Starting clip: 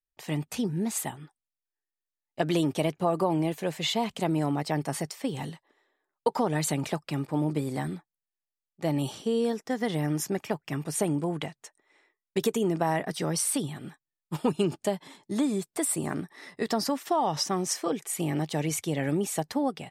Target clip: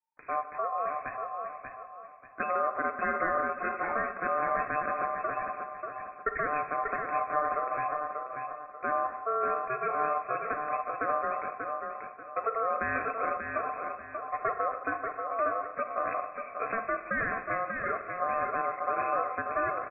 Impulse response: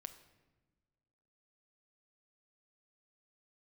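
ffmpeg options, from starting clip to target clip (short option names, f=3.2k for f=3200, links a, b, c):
-filter_complex "[1:a]atrim=start_sample=2205[a];[0:a][a]afir=irnorm=-1:irlink=0,asplit=2[b][c];[c]alimiter=level_in=1.5dB:limit=-24dB:level=0:latency=1:release=25,volume=-1.5dB,volume=0dB[d];[b][d]amix=inputs=2:normalize=0,aecho=1:1:588|1176|1764|2352:0.531|0.17|0.0544|0.0174,aeval=exprs='val(0)*sin(2*PI*1700*n/s)':c=same,lowpass=f=2.2k:t=q:w=0.5098,lowpass=f=2.2k:t=q:w=0.6013,lowpass=f=2.2k:t=q:w=0.9,lowpass=f=2.2k:t=q:w=2.563,afreqshift=-2600"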